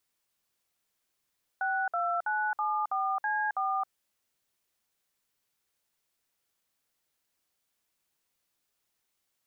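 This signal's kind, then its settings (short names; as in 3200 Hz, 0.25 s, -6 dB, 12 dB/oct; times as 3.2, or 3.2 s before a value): DTMF "62974C4", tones 0.269 s, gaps 57 ms, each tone -29.5 dBFS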